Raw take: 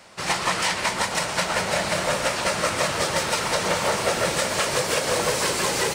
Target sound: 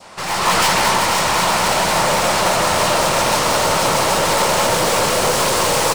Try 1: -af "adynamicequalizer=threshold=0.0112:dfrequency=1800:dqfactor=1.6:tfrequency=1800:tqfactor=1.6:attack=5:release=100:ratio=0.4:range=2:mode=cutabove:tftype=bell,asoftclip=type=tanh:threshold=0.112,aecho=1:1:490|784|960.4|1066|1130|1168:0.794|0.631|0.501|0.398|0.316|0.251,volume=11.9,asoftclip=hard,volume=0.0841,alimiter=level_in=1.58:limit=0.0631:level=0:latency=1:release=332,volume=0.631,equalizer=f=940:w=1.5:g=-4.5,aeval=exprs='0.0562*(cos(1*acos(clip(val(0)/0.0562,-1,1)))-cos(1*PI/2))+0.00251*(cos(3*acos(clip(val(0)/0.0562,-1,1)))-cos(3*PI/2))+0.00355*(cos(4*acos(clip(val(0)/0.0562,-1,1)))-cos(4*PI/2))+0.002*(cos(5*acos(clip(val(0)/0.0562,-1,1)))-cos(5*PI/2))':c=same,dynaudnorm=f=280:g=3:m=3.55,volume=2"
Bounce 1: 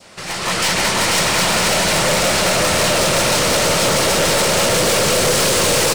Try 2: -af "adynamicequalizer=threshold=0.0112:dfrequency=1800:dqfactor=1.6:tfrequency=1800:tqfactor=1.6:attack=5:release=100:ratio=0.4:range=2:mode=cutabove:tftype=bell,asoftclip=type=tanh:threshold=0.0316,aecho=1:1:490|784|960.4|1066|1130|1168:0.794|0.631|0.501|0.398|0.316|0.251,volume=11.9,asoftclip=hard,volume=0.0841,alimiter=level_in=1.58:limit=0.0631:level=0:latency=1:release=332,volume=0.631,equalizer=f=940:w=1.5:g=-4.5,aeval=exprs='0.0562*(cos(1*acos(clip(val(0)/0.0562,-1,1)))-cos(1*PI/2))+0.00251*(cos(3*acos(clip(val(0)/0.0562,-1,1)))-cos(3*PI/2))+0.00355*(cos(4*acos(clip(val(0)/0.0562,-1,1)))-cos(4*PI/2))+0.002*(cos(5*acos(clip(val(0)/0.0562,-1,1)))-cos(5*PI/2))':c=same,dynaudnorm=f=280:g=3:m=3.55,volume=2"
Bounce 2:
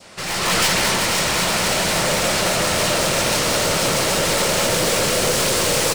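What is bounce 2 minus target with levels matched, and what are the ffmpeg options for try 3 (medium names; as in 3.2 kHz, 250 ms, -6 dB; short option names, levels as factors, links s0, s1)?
1 kHz band -5.5 dB
-af "adynamicequalizer=threshold=0.0112:dfrequency=1800:dqfactor=1.6:tfrequency=1800:tqfactor=1.6:attack=5:release=100:ratio=0.4:range=2:mode=cutabove:tftype=bell,asoftclip=type=tanh:threshold=0.0316,aecho=1:1:490|784|960.4|1066|1130|1168:0.794|0.631|0.501|0.398|0.316|0.251,volume=11.9,asoftclip=hard,volume=0.0841,alimiter=level_in=1.58:limit=0.0631:level=0:latency=1:release=332,volume=0.631,equalizer=f=940:w=1.5:g=5.5,aeval=exprs='0.0562*(cos(1*acos(clip(val(0)/0.0562,-1,1)))-cos(1*PI/2))+0.00251*(cos(3*acos(clip(val(0)/0.0562,-1,1)))-cos(3*PI/2))+0.00355*(cos(4*acos(clip(val(0)/0.0562,-1,1)))-cos(4*PI/2))+0.002*(cos(5*acos(clip(val(0)/0.0562,-1,1)))-cos(5*PI/2))':c=same,dynaudnorm=f=280:g=3:m=3.55,volume=2"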